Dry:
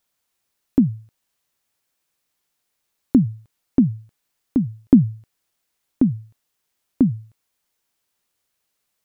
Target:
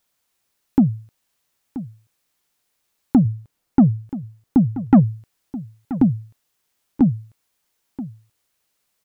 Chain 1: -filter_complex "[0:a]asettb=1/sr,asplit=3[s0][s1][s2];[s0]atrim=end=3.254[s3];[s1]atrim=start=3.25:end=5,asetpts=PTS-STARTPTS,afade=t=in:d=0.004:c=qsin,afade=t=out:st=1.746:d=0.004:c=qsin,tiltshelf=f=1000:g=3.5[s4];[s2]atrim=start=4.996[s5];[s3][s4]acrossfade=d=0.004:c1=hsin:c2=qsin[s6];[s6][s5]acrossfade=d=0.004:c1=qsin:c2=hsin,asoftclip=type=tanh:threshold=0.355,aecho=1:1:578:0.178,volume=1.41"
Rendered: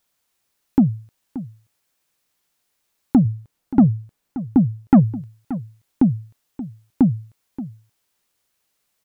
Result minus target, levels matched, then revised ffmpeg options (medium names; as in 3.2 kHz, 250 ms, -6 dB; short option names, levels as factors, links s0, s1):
echo 402 ms early
-filter_complex "[0:a]asettb=1/sr,asplit=3[s0][s1][s2];[s0]atrim=end=3.254[s3];[s1]atrim=start=3.25:end=5,asetpts=PTS-STARTPTS,afade=t=in:d=0.004:c=qsin,afade=t=out:st=1.746:d=0.004:c=qsin,tiltshelf=f=1000:g=3.5[s4];[s2]atrim=start=4.996[s5];[s3][s4]acrossfade=d=0.004:c1=hsin:c2=qsin[s6];[s6][s5]acrossfade=d=0.004:c1=qsin:c2=hsin,asoftclip=type=tanh:threshold=0.355,aecho=1:1:980:0.178,volume=1.41"